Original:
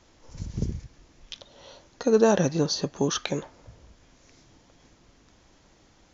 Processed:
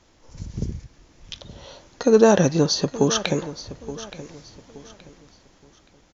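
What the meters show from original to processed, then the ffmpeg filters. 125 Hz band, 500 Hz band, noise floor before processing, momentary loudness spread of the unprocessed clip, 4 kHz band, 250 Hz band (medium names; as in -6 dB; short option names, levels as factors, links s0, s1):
+5.0 dB, +5.5 dB, -60 dBFS, 23 LU, +5.5 dB, +5.5 dB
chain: -af "aeval=exprs='0.447*(cos(1*acos(clip(val(0)/0.447,-1,1)))-cos(1*PI/2))+0.00631*(cos(5*acos(clip(val(0)/0.447,-1,1)))-cos(5*PI/2))':c=same,dynaudnorm=f=280:g=9:m=2.24,aecho=1:1:873|1746|2619:0.178|0.0551|0.0171"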